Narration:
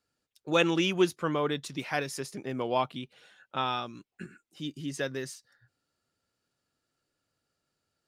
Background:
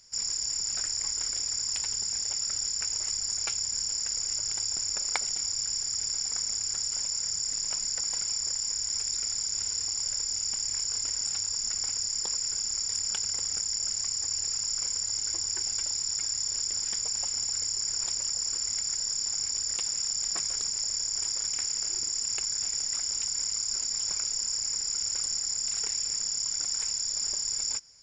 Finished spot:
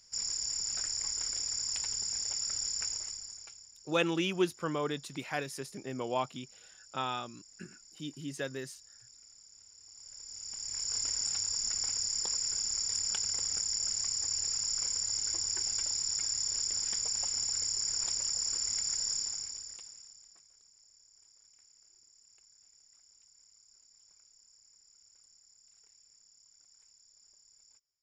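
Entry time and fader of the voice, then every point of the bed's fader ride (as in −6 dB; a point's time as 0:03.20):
3.40 s, −4.5 dB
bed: 0:02.87 −4 dB
0:03.75 −26 dB
0:09.75 −26 dB
0:10.96 −2.5 dB
0:19.15 −2.5 dB
0:20.47 −32 dB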